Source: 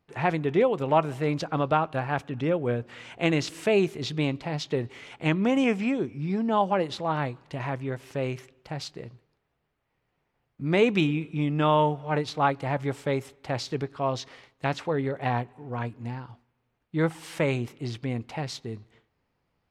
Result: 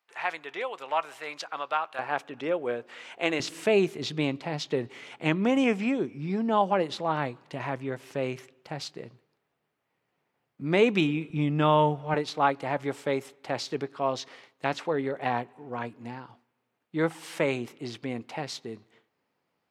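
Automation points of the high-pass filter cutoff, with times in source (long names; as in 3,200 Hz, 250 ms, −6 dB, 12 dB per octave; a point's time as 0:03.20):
1,000 Hz
from 0:01.99 400 Hz
from 0:03.40 170 Hz
from 0:11.30 62 Hz
from 0:12.14 220 Hz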